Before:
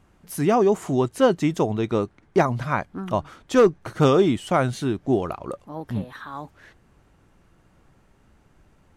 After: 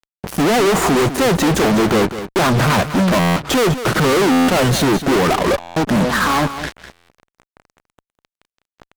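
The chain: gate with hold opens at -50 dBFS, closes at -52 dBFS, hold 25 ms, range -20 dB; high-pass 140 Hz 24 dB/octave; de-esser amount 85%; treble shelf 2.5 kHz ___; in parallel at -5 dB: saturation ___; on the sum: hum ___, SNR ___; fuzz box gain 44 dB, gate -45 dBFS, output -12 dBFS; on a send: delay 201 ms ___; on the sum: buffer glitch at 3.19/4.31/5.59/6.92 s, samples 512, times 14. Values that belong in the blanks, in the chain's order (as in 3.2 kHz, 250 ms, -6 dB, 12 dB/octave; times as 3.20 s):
-8.5 dB, -20.5 dBFS, 60 Hz, 32 dB, -11.5 dB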